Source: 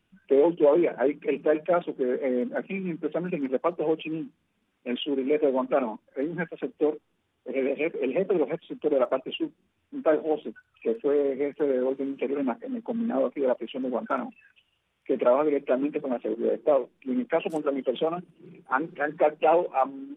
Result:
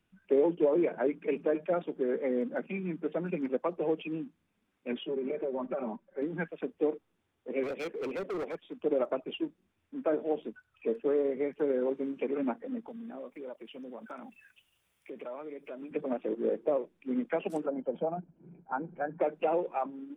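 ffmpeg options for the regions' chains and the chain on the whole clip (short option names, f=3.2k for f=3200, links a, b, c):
-filter_complex "[0:a]asettb=1/sr,asplit=3[a][b][c];[a]atrim=end=4.924[d];[b]atrim=start=4.92:end=6.22,asetpts=PTS-STARTPTS,afade=t=in:d=0.004:c=qsin,afade=t=out:st=1.296:d=0.004:c=qsin,highshelf=f=2.7k:g=-10.5,aecho=1:1:5.2:0.8,atrim=end_sample=57330,acompressor=threshold=-25dB:ratio=10:attack=3.2:release=140:knee=1:detection=peak[e];[c]atrim=start=6.216[f];[d][e]acrossfade=d=0.004:c1=hsin:c2=qsin[g];[g][f]acrossfade=d=0.004:c1=qsin:c2=hsin,asettb=1/sr,asplit=3[h][i][j];[h]atrim=end=7.634[k];[i]atrim=start=7.63:end=8.77,asetpts=PTS-STARTPTS,afade=t=in:d=0.004:c=qsin,afade=t=out:st=1.136:d=0.004:c=qsin,equalizer=f=150:t=o:w=1.4:g=-7,asoftclip=type=hard:threshold=-28dB[l];[j]atrim=start=8.766[m];[k][l]acrossfade=d=0.004:c1=hsin:c2=qsin[n];[n][m]acrossfade=d=0.004:c1=qsin:c2=hsin,asettb=1/sr,asplit=3[o][p][q];[o]atrim=end=12.884[r];[p]atrim=start=12.88:end=15.91,asetpts=PTS-STARTPTS,afade=t=in:d=0.004:c=qsin,afade=t=out:st=3.026:d=0.004:c=qsin,aemphasis=mode=production:type=75kf,acompressor=threshold=-42dB:ratio=2.5:attack=3.2:release=140:knee=1:detection=peak[s];[q]atrim=start=15.906[t];[r][s]acrossfade=d=0.004:c1=hsin:c2=qsin[u];[u][t]acrossfade=d=0.004:c1=qsin:c2=hsin,asettb=1/sr,asplit=3[v][w][x];[v]atrim=end=17.664[y];[w]atrim=start=17.66:end=19.21,asetpts=PTS-STARTPTS,afade=t=in:d=0.004:c=qsin,afade=t=out:st=1.546:d=0.004:c=qsin,lowpass=1k,aecho=1:1:1.3:0.53,atrim=end_sample=68355[z];[x]atrim=start=19.206[aa];[y][z]acrossfade=d=0.004:c1=hsin:c2=qsin[ab];[ab][aa]acrossfade=d=0.004:c1=qsin:c2=hsin,equalizer=f=3k:w=3.4:g=-3.5,acrossover=split=460[ac][ad];[ad]acompressor=threshold=-26dB:ratio=6[ae];[ac][ae]amix=inputs=2:normalize=0,volume=-4dB"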